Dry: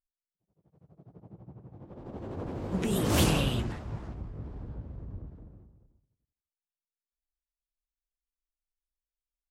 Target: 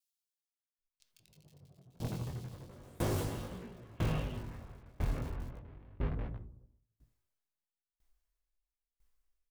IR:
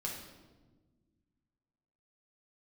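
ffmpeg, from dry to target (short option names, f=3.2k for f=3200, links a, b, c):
-filter_complex "[0:a]lowshelf=f=100:g=7.5,acompressor=threshold=-37dB:ratio=16,asplit=2[a][b];[b]aeval=exprs='(mod(100*val(0)+1,2)-1)/100':c=same,volume=-5dB[c];[a][c]amix=inputs=2:normalize=0,flanger=delay=17:depth=7.1:speed=0.34,acrossover=split=3100[d][e];[d]adelay=790[f];[f][e]amix=inputs=2:normalize=0,asplit=2[g][h];[1:a]atrim=start_sample=2205,atrim=end_sample=3969,lowpass=4.7k[i];[h][i]afir=irnorm=-1:irlink=0,volume=-5.5dB[j];[g][j]amix=inputs=2:normalize=0,aeval=exprs='val(0)*pow(10,-28*if(lt(mod(1*n/s,1),2*abs(1)/1000),1-mod(1*n/s,1)/(2*abs(1)/1000),(mod(1*n/s,1)-2*abs(1)/1000)/(1-2*abs(1)/1000))/20)':c=same,volume=11dB"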